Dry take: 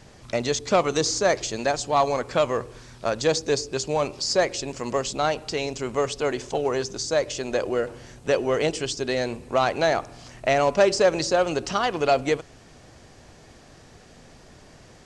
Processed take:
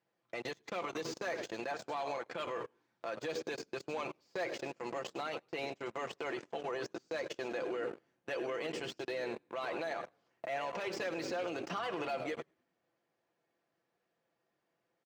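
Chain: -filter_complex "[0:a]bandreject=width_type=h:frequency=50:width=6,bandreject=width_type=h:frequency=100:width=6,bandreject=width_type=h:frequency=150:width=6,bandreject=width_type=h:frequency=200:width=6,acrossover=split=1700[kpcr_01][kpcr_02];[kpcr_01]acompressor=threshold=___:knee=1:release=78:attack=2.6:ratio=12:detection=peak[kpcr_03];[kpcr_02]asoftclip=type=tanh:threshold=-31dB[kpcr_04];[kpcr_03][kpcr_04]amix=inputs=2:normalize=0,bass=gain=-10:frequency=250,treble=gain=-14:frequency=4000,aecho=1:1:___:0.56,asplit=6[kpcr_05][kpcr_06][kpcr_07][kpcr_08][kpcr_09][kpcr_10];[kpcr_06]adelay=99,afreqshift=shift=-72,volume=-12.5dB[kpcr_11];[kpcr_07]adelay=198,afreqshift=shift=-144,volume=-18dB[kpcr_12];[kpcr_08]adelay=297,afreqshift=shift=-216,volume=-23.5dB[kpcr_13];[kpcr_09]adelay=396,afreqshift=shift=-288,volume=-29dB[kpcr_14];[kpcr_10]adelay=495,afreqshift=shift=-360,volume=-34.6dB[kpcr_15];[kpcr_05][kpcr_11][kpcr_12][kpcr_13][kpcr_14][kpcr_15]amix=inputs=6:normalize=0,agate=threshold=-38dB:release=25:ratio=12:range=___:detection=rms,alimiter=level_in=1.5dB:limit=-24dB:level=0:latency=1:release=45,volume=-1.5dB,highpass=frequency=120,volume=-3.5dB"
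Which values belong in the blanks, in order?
-28dB, 5.9, -27dB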